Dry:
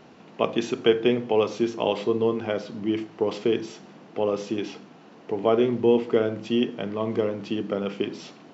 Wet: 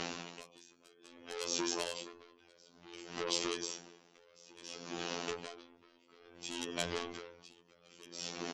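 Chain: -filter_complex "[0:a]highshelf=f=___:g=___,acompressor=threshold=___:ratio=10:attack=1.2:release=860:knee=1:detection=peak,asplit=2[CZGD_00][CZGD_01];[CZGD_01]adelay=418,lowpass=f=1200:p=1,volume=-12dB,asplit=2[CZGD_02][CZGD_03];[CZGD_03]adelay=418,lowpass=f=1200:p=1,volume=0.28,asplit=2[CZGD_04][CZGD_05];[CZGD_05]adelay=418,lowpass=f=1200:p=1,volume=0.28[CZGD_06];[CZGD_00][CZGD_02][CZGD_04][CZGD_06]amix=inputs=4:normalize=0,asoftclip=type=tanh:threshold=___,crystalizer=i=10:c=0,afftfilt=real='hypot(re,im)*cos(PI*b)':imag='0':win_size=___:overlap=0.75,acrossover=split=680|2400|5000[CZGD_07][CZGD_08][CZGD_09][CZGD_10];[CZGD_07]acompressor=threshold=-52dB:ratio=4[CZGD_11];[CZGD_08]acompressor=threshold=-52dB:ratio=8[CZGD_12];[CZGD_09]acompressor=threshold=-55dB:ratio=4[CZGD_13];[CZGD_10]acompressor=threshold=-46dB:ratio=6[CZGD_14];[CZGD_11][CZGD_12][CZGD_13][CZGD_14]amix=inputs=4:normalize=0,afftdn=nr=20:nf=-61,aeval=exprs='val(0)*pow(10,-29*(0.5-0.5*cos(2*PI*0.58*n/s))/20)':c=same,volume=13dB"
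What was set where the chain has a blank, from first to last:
2300, -2.5, -24dB, -33.5dB, 2048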